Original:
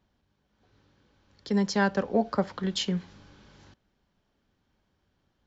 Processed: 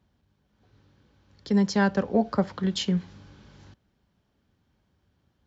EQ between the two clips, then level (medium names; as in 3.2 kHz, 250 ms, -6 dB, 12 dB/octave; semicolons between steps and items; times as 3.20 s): high-pass 66 Hz; bass shelf 160 Hz +10 dB; 0.0 dB